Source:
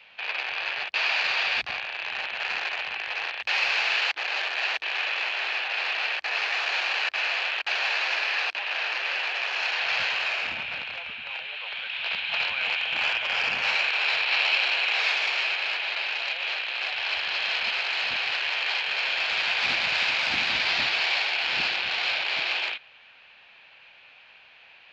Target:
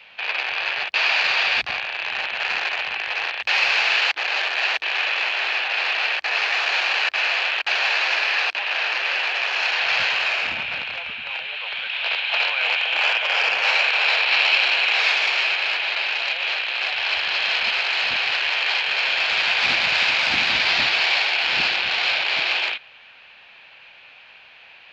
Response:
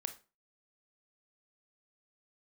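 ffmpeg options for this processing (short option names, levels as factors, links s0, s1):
-filter_complex "[0:a]asettb=1/sr,asplit=3[s0][s1][s2];[s0]atrim=end=11.924[s3];[s1]atrim=start=11.92:end=14.28,asetpts=PTS-STARTPTS,afade=t=in:d=0.004:c=qsin,afade=t=out:st=2.356:d=0.004:c=qsin,lowshelf=f=310:t=q:w=1.5:g=-14[s4];[s2]atrim=start=14.276[s5];[s3][s4]acrossfade=d=0.004:c1=hsin:c2=qsin[s6];[s6][s5]acrossfade=d=0.004:c1=qsin:c2=hsin,volume=1.88"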